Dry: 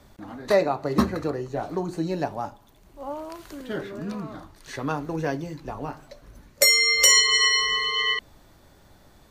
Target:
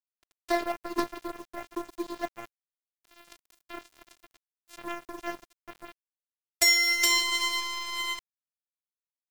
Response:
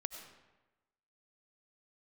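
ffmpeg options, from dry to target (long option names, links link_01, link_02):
-af "afftfilt=real='hypot(re,im)*cos(PI*b)':imag='0':win_size=512:overlap=0.75,acrusher=bits=6:mode=log:mix=0:aa=0.000001,aeval=exprs='sgn(val(0))*max(abs(val(0))-0.0266,0)':channel_layout=same"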